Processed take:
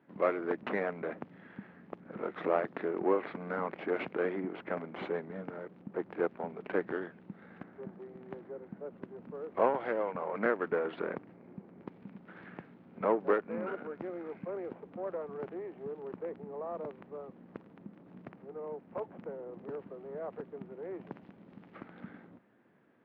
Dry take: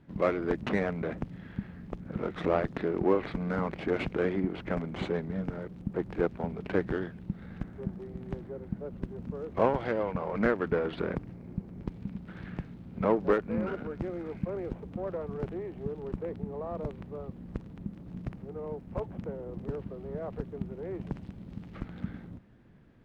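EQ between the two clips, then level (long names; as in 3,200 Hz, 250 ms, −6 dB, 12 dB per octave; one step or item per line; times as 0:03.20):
band-pass filter 260–2,200 Hz
low-shelf EQ 360 Hz −5.5 dB
0.0 dB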